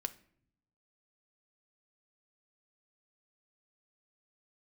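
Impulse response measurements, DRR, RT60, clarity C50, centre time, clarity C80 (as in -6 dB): 9.0 dB, no single decay rate, 17.0 dB, 4 ms, 21.5 dB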